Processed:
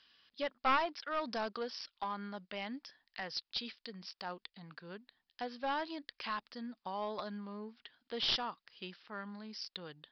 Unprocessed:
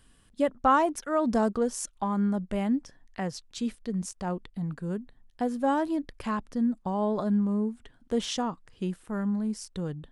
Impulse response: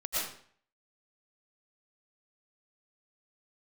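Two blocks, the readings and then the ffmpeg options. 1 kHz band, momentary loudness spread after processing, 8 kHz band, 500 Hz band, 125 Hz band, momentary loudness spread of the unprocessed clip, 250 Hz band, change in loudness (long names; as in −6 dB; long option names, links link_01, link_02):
−8.0 dB, 16 LU, −20.5 dB, −12.0 dB, −20.0 dB, 9 LU, −18.5 dB, −10.0 dB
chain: -af "aderivative,aresample=11025,aeval=exprs='clip(val(0),-1,0.0075)':channel_layout=same,aresample=44100,volume=11dB"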